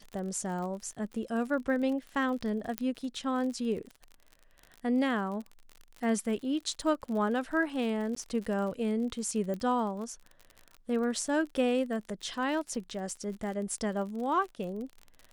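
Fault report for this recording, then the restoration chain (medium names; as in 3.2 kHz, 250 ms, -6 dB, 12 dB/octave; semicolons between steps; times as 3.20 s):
crackle 50 per s -38 dBFS
2.78 s: pop -15 dBFS
8.15–8.16 s: dropout 14 ms
9.54 s: pop -25 dBFS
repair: de-click; interpolate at 8.15 s, 14 ms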